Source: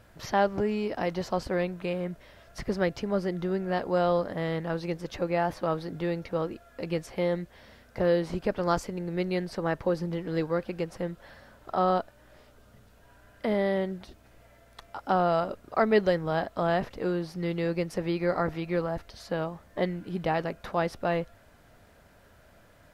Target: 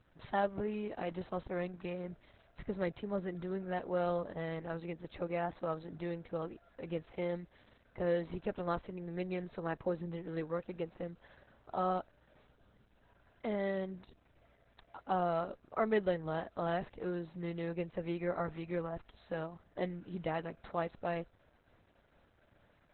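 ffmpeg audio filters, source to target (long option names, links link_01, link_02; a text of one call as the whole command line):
ffmpeg -i in.wav -filter_complex "[0:a]asplit=3[link_01][link_02][link_03];[link_01]afade=type=out:start_time=2.03:duration=0.02[link_04];[link_02]bandreject=frequency=1700:width=29,afade=type=in:start_time=2.03:duration=0.02,afade=type=out:start_time=2.84:duration=0.02[link_05];[link_03]afade=type=in:start_time=2.84:duration=0.02[link_06];[link_04][link_05][link_06]amix=inputs=3:normalize=0,volume=-8dB" -ar 48000 -c:a libopus -b:a 8k out.opus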